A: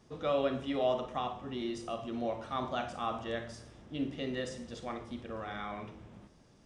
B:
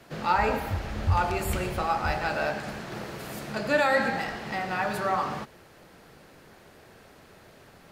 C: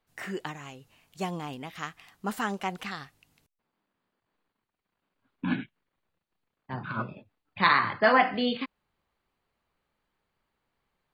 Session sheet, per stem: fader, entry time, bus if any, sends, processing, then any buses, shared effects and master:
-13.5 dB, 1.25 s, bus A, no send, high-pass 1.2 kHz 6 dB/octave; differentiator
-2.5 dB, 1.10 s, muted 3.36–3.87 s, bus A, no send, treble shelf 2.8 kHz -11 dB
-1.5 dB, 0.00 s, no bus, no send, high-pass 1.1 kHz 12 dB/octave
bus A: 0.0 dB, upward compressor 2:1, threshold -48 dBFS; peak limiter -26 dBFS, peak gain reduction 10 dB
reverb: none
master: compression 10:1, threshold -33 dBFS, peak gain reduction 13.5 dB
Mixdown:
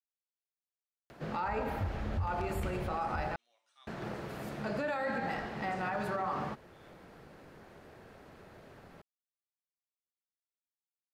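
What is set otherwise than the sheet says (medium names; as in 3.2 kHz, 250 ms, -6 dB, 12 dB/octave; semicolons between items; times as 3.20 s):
stem C: muted; master: missing compression 10:1, threshold -33 dBFS, peak gain reduction 13.5 dB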